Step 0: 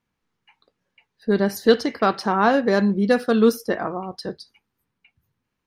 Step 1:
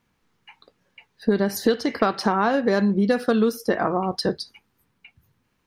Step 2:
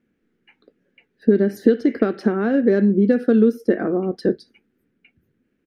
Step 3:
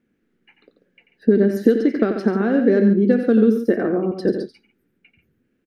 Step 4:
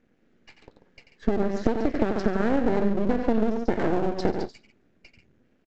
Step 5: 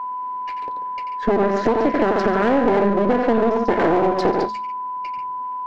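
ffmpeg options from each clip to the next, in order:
-af "acompressor=threshold=0.0562:ratio=10,volume=2.66"
-af "firequalizer=gain_entry='entry(120,0);entry(230,13);entry(380,13);entry(970,-12);entry(1500,4);entry(4300,-8)':delay=0.05:min_phase=1,volume=0.501"
-af "aecho=1:1:89|140:0.376|0.282"
-af "acompressor=threshold=0.0708:ratio=6,aresample=16000,aeval=exprs='max(val(0),0)':c=same,aresample=44100,volume=2"
-filter_complex "[0:a]aeval=exprs='val(0)+0.0112*sin(2*PI*1000*n/s)':c=same,bandreject=f=71.71:t=h:w=4,bandreject=f=143.42:t=h:w=4,bandreject=f=215.13:t=h:w=4,asplit=2[s0][s1];[s1]highpass=f=720:p=1,volume=14.1,asoftclip=type=tanh:threshold=0.562[s2];[s0][s2]amix=inputs=2:normalize=0,lowpass=f=1600:p=1,volume=0.501"

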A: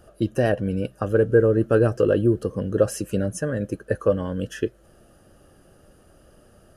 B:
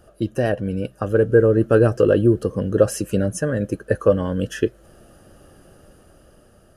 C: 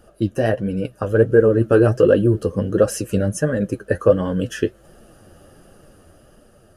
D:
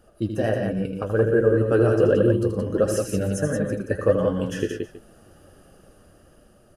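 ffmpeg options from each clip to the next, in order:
-af "dynaudnorm=f=270:g=9:m=2.11"
-af "flanger=delay=3.4:depth=9:regen=40:speed=1.4:shape=triangular,volume=1.78"
-af "aecho=1:1:80|117|174|321:0.422|0.237|0.562|0.119,volume=0.531"

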